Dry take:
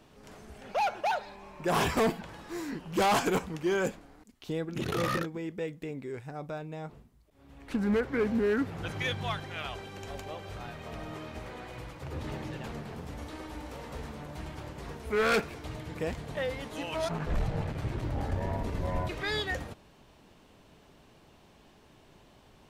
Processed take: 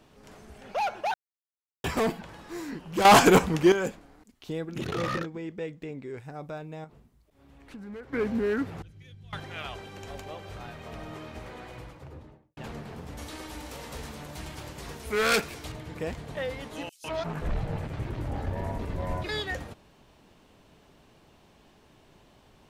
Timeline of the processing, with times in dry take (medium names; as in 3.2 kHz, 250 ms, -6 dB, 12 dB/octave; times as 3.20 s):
1.14–1.84 s: mute
3.05–3.72 s: gain +10.5 dB
4.87–6.17 s: peaking EQ 12 kHz -13.5 dB 0.65 oct
6.84–8.13 s: compression 2:1, threshold -51 dBFS
8.82–9.33 s: amplifier tone stack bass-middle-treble 10-0-1
11.66–12.57 s: studio fade out
13.17–15.72 s: treble shelf 2.9 kHz +11 dB
16.89–19.29 s: bands offset in time highs, lows 150 ms, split 5.5 kHz